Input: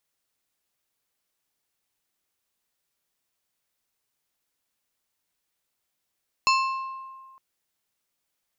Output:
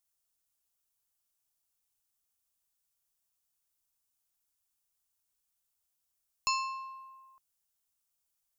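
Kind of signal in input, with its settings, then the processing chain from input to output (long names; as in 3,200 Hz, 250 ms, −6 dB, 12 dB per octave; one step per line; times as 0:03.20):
struck glass plate, length 0.91 s, lowest mode 1,060 Hz, decay 1.73 s, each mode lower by 3 dB, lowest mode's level −18 dB
graphic EQ with 10 bands 125 Hz −6 dB, 250 Hz −12 dB, 500 Hz −11 dB, 1,000 Hz −4 dB, 2,000 Hz −11 dB, 4,000 Hz −6 dB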